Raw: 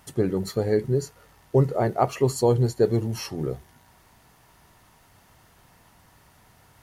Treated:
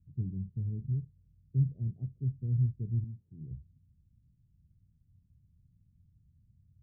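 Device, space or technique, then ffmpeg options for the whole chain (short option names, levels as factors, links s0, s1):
the neighbour's flat through the wall: -filter_complex "[0:a]lowpass=f=180:w=0.5412,lowpass=f=180:w=1.3066,equalizer=f=83:t=o:w=0.93:g=5.5,asettb=1/sr,asplit=3[s0][s1][s2];[s0]atrim=end=3.044[s3];[s1]atrim=start=3.04:end=3.51,asetpts=PTS-STARTPTS,afade=t=in:d=0.004:c=qsin,afade=t=out:st=0.466:d=0.004:c=qsin,highpass=f=280:p=1[s4];[s2]atrim=start=3.506[s5];[s3][s4]acrossfade=d=0.004:c1=hsin:c2=qsin[s6];[s6][s5]acrossfade=d=0.004:c1=qsin:c2=hsin,volume=0.473"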